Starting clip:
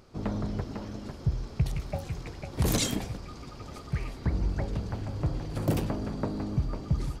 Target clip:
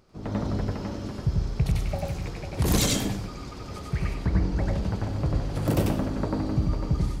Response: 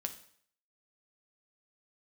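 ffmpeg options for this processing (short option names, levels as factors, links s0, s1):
-filter_complex "[0:a]asplit=2[s0][s1];[1:a]atrim=start_sample=2205,adelay=93[s2];[s1][s2]afir=irnorm=-1:irlink=0,volume=1.06[s3];[s0][s3]amix=inputs=2:normalize=0,dynaudnorm=f=120:g=5:m=2.24,asettb=1/sr,asplit=3[s4][s5][s6];[s4]atrim=end=4.144[s7];[s5]atrim=start=4.14:end=4.58,asetpts=PTS-STARTPTS,afade=t=in:d=0.004:c=qsin,afade=t=out:st=0.436:d=0.004:c=qsin,highshelf=f=9600:g=-6[s8];[s6]atrim=start=4.576[s9];[s7][s8]acrossfade=d=0.004:c1=hsin:c2=qsin[s10];[s10][s9]acrossfade=d=0.004:c1=qsin:c2=hsin,volume=0.562"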